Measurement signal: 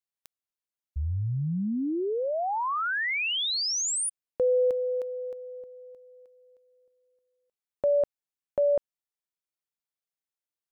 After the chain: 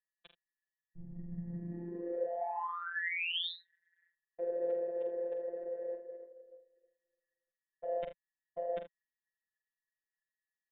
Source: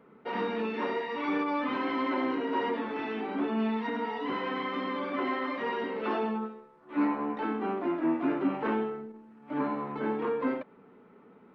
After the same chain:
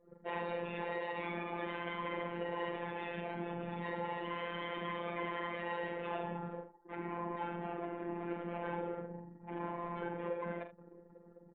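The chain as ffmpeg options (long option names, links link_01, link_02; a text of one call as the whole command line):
ffmpeg -i in.wav -filter_complex "[0:a]areverse,acompressor=threshold=-45dB:ratio=4:attack=1.8:release=20:knee=1:detection=peak,areverse,aeval=exprs='val(0)+0.000316*sin(2*PI*1800*n/s)':channel_layout=same,afftfilt=real='hypot(re,im)*cos(2*PI*random(0))':imag='hypot(re,im)*sin(2*PI*random(1))':win_size=512:overlap=0.75,lowshelf=frequency=140:gain=-3.5,acrossover=split=170[link_01][link_02];[link_01]acompressor=threshold=-55dB:ratio=4:attack=5.3:release=65:knee=2.83:detection=peak[link_03];[link_03][link_02]amix=inputs=2:normalize=0,anlmdn=0.000251,equalizer=frequency=160:width_type=o:width=0.33:gain=-9,equalizer=frequency=315:width_type=o:width=0.33:gain=-9,equalizer=frequency=1250:width_type=o:width=0.33:gain=-9,aecho=1:1:45|78:0.398|0.224,aresample=8000,aresample=44100,afftfilt=real='hypot(re,im)*cos(PI*b)':imag='0':win_size=1024:overlap=0.75,volume=16dB" out.wav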